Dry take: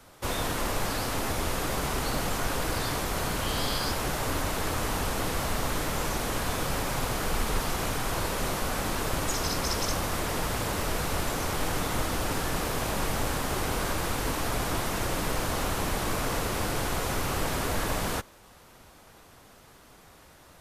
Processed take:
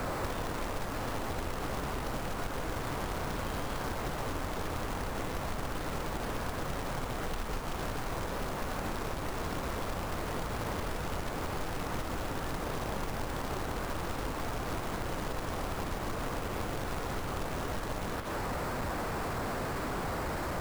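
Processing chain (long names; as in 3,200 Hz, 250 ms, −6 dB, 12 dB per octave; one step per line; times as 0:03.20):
linear delta modulator 32 kbit/s, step −27.5 dBFS
low-pass filter 1,600 Hz 12 dB per octave
downward compressor 16 to 1, threshold −31 dBFS, peak gain reduction 10 dB
log-companded quantiser 4 bits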